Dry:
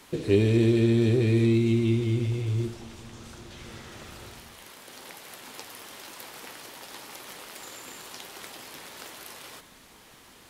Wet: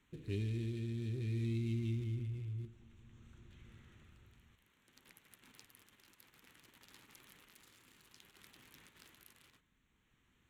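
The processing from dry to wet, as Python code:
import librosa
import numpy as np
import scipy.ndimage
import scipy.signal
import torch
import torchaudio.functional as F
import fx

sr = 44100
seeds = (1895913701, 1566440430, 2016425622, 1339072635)

p1 = fx.wiener(x, sr, points=9)
p2 = fx.tone_stack(p1, sr, knobs='6-0-2')
p3 = fx.level_steps(p2, sr, step_db=23)
p4 = p2 + (p3 * 10.0 ** (0.0 / 20.0))
y = p4 * (1.0 - 0.4 / 2.0 + 0.4 / 2.0 * np.cos(2.0 * np.pi * 0.57 * (np.arange(len(p4)) / sr)))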